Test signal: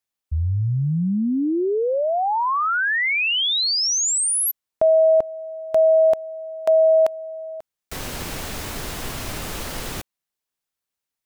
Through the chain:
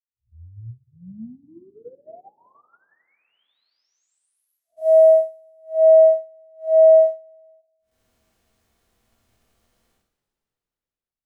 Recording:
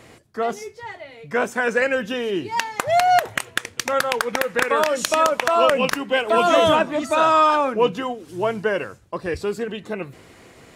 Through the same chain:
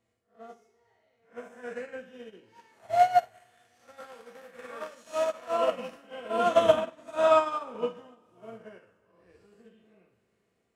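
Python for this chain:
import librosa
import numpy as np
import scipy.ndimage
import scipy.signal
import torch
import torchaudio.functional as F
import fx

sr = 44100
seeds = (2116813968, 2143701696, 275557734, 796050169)

y = fx.spec_blur(x, sr, span_ms=153.0)
y = fx.rev_double_slope(y, sr, seeds[0], early_s=0.2, late_s=3.6, knee_db=-21, drr_db=-2.0)
y = fx.upward_expand(y, sr, threshold_db=-26.0, expansion=2.5)
y = y * librosa.db_to_amplitude(-6.5)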